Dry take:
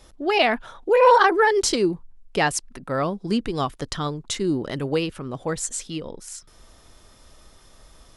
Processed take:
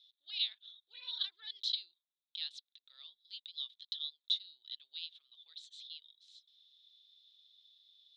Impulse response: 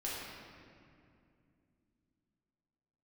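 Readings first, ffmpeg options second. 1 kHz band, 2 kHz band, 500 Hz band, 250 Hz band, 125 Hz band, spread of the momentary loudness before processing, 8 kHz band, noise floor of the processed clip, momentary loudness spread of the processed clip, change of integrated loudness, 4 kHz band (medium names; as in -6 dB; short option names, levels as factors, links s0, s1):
under -40 dB, -31.5 dB, under -40 dB, under -40 dB, under -40 dB, 17 LU, under -30 dB, under -85 dBFS, 19 LU, -18.0 dB, -6.0 dB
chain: -af "asuperpass=centerf=3700:order=4:qfactor=6,volume=1.19"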